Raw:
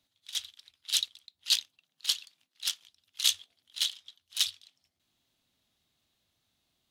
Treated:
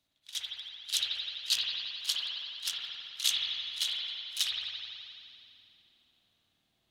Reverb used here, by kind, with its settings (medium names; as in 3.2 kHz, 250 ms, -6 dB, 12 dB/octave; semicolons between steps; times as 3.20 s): spring tank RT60 2.6 s, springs 53 ms, chirp 40 ms, DRR -4.5 dB; trim -3.5 dB